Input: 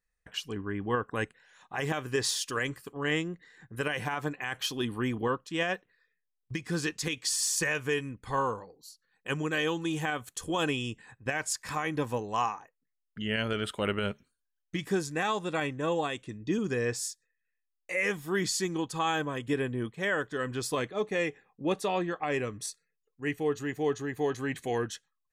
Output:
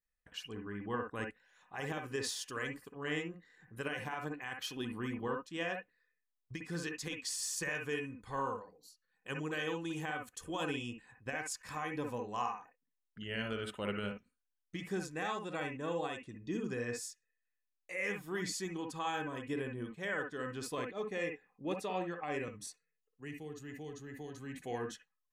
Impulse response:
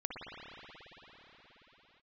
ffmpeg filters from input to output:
-filter_complex "[1:a]atrim=start_sample=2205,atrim=end_sample=3087[link_01];[0:a][link_01]afir=irnorm=-1:irlink=0,asettb=1/sr,asplit=3[link_02][link_03][link_04];[link_02]atrim=end=22.484[link_05];[link_03]atrim=start=22.48:end=24.62,asetpts=PTS-STARTPTS,afade=type=in:duration=0.004:curve=qsin,afade=type=out:start_time=2.136:duration=0.004:curve=qsin,acrossover=split=220|3000[link_06][link_07][link_08];[link_07]acompressor=threshold=-42dB:ratio=6[link_09];[link_06][link_09][link_08]amix=inputs=3:normalize=0[link_10];[link_04]atrim=start=24.616[link_11];[link_05][link_10]acrossfade=duration=0.004:curve1=hsin:curve2=qsin[link_12];[link_12][link_11]acrossfade=duration=0.004:curve1=qsin:curve2=hsin,volume=-6dB"

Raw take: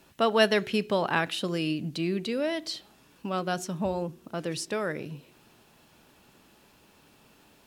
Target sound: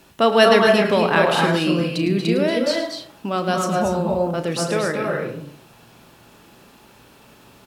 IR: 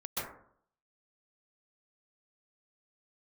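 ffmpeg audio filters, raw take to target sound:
-filter_complex "[0:a]asplit=2[link_01][link_02];[link_02]adelay=35,volume=-11dB[link_03];[link_01][link_03]amix=inputs=2:normalize=0,asplit=2[link_04][link_05];[1:a]atrim=start_sample=2205,adelay=108[link_06];[link_05][link_06]afir=irnorm=-1:irlink=0,volume=-5dB[link_07];[link_04][link_07]amix=inputs=2:normalize=0,volume=7dB"

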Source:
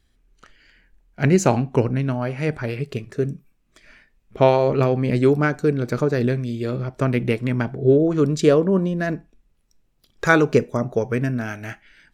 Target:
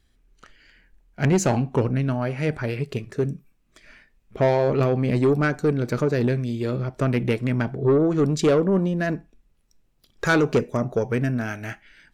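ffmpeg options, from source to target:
ffmpeg -i in.wav -af "asoftclip=type=tanh:threshold=-12.5dB" out.wav

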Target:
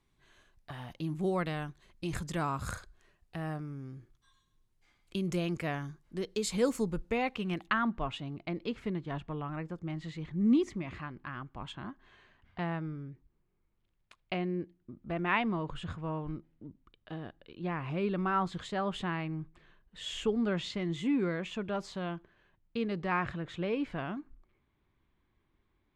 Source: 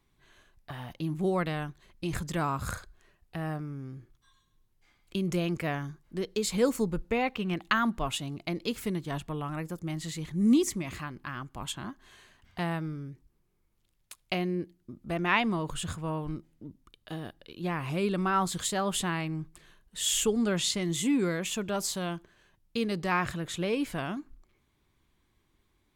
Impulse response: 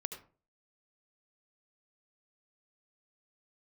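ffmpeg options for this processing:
-af "asetnsamples=nb_out_samples=441:pad=0,asendcmd='7.67 lowpass f 2700',lowpass=11000,volume=-3dB"

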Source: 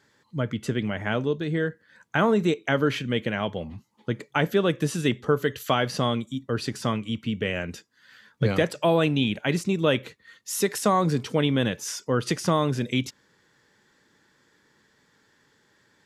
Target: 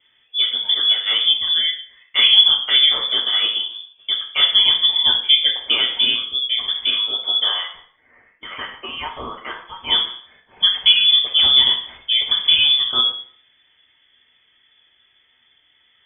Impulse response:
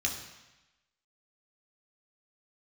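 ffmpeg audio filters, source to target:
-filter_complex "[0:a]asplit=3[link_01][link_02][link_03];[link_01]afade=type=out:start_time=7.62:duration=0.02[link_04];[link_02]highpass=1400,afade=type=in:start_time=7.62:duration=0.02,afade=type=out:start_time=9.89:duration=0.02[link_05];[link_03]afade=type=in:start_time=9.89:duration=0.02[link_06];[link_04][link_05][link_06]amix=inputs=3:normalize=0[link_07];[1:a]atrim=start_sample=2205,asetrate=88200,aresample=44100[link_08];[link_07][link_08]afir=irnorm=-1:irlink=0,lowpass=frequency=3100:width_type=q:width=0.5098,lowpass=frequency=3100:width_type=q:width=0.6013,lowpass=frequency=3100:width_type=q:width=0.9,lowpass=frequency=3100:width_type=q:width=2.563,afreqshift=-3600,volume=6dB"

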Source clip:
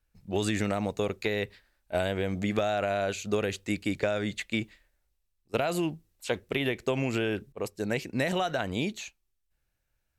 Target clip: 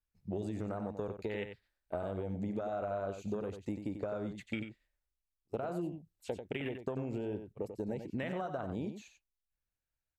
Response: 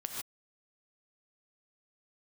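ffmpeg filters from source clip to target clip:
-filter_complex "[0:a]afwtdn=0.0251,acompressor=threshold=-38dB:ratio=5,asplit=2[link_01][link_02];[link_02]aecho=0:1:92:0.376[link_03];[link_01][link_03]amix=inputs=2:normalize=0,volume=2dB"

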